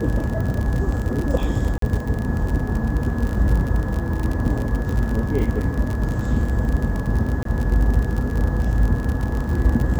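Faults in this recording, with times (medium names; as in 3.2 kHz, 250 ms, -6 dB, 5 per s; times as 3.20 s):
crackle 47 per s -24 dBFS
1.78–1.82 s: dropout 43 ms
7.43–7.45 s: dropout 23 ms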